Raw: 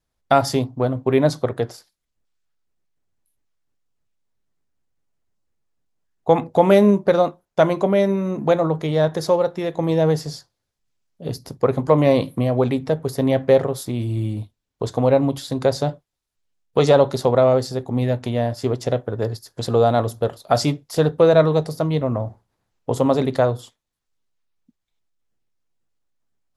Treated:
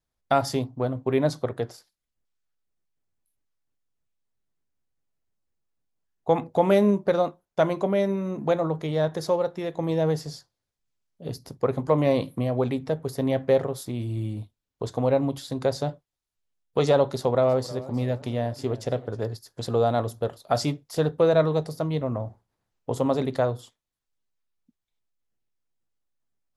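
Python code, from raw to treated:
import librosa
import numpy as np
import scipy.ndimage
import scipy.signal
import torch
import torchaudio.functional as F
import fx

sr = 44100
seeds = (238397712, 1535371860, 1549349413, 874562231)

y = fx.echo_warbled(x, sr, ms=319, feedback_pct=44, rate_hz=2.8, cents=129, wet_db=-18, at=(17.03, 19.24))
y = F.gain(torch.from_numpy(y), -6.0).numpy()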